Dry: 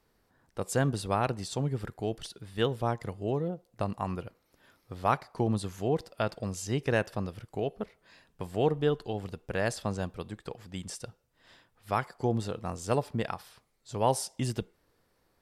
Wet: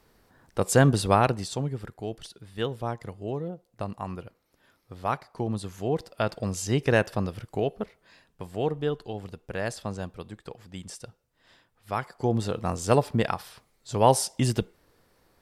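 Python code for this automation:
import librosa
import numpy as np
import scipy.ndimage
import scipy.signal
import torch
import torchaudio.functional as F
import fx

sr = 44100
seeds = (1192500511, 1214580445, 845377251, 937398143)

y = fx.gain(x, sr, db=fx.line((1.12, 8.5), (1.8, -1.5), (5.47, -1.5), (6.58, 5.5), (7.55, 5.5), (8.44, -1.0), (11.91, -1.0), (12.62, 7.0)))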